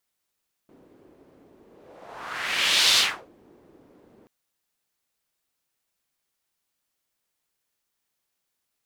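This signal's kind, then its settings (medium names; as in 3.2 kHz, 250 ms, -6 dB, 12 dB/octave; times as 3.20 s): whoosh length 3.58 s, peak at 2.28 s, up 1.42 s, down 0.35 s, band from 350 Hz, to 4 kHz, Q 2, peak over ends 36.5 dB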